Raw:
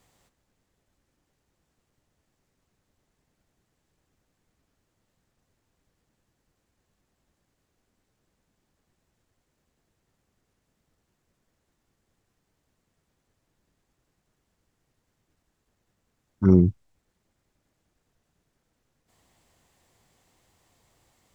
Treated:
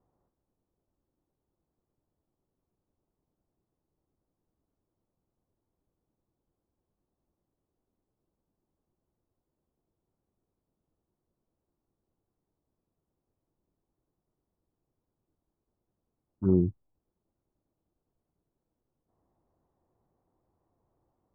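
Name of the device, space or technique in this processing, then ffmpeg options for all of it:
under water: -af "lowpass=frequency=1100:width=0.5412,lowpass=frequency=1100:width=1.3066,equalizer=frequency=340:width_type=o:width=0.52:gain=5,volume=-8.5dB"

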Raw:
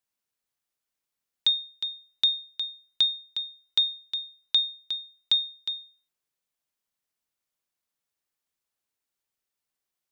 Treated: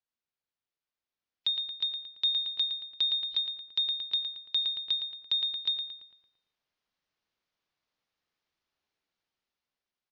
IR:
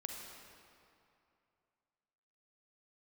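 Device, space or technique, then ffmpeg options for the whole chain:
low-bitrate web radio: -filter_complex "[0:a]lowpass=frequency=5100:width=0.5412,lowpass=frequency=5100:width=1.3066,asettb=1/sr,asplit=3[link_01][link_02][link_03];[link_01]atrim=end=2.244[link_04];[link_02]atrim=start=2.24:end=3.29,asetpts=PTS-STARTPTS,afade=type=in:duration=0.004:curve=qsin,afade=type=out:start_time=1.046:duration=0.004:curve=qsin,aecho=1:1:3.5:0.56,atrim=end_sample=46305[link_05];[link_03]atrim=start=3.286[link_06];[link_04][link_05]acrossfade=duration=0.004:curve1=hsin:curve2=qsin[link_07];[link_07][link_06]acrossfade=duration=0.004:curve1=qsin:curve2=hsin,asplit=2[link_08][link_09];[link_09]adelay=113,lowpass=frequency=2900:poles=1,volume=-7dB,asplit=2[link_10][link_11];[link_11]adelay=113,lowpass=frequency=2900:poles=1,volume=0.54,asplit=2[link_12][link_13];[link_13]adelay=113,lowpass=frequency=2900:poles=1,volume=0.54,asplit=2[link_14][link_15];[link_15]adelay=113,lowpass=frequency=2900:poles=1,volume=0.54,asplit=2[link_16][link_17];[link_17]adelay=113,lowpass=frequency=2900:poles=1,volume=0.54,asplit=2[link_18][link_19];[link_19]adelay=113,lowpass=frequency=2900:poles=1,volume=0.54,asplit=2[link_20][link_21];[link_21]adelay=113,lowpass=frequency=2900:poles=1,volume=0.54[link_22];[link_08][link_10][link_12][link_14][link_16][link_18][link_20][link_22]amix=inputs=8:normalize=0,dynaudnorm=framelen=250:gausssize=13:maxgain=11dB,alimiter=limit=-14dB:level=0:latency=1:release=299,volume=-6dB" -ar 16000 -c:a libmp3lame -b:a 48k

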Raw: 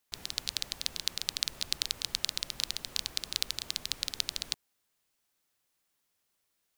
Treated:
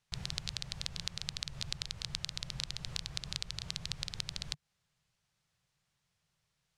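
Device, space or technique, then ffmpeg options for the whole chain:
jukebox: -af "lowpass=6500,lowshelf=frequency=200:width_type=q:width=3:gain=9.5,acompressor=threshold=-34dB:ratio=6,volume=1dB"

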